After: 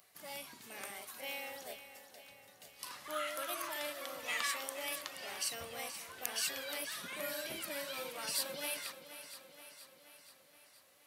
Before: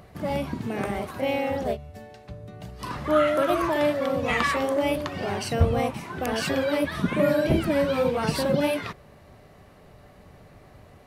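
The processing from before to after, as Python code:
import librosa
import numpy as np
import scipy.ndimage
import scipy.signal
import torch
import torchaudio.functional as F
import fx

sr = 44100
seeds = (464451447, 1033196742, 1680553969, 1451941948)

p1 = np.diff(x, prepend=0.0)
y = p1 + fx.echo_feedback(p1, sr, ms=476, feedback_pct=59, wet_db=-12.0, dry=0)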